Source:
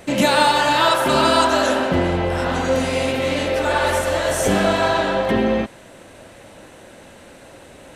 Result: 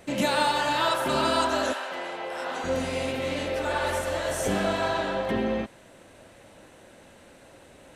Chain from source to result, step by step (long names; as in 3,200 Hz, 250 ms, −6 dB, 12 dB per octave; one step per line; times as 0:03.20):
0:01.72–0:02.63: high-pass filter 940 Hz → 390 Hz 12 dB per octave
level −8.5 dB